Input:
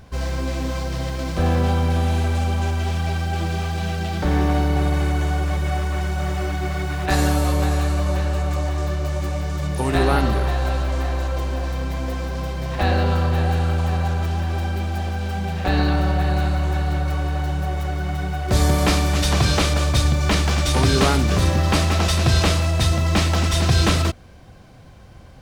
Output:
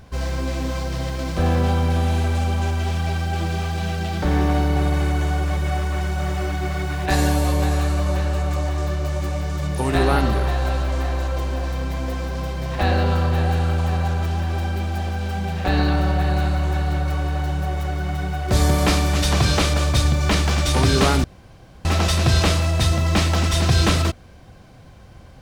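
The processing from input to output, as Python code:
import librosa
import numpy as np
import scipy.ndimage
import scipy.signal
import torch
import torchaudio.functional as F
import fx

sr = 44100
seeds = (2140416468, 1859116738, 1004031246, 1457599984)

y = fx.notch(x, sr, hz=1300.0, q=9.6, at=(6.97, 7.73))
y = fx.edit(y, sr, fx.room_tone_fill(start_s=21.24, length_s=0.61), tone=tone)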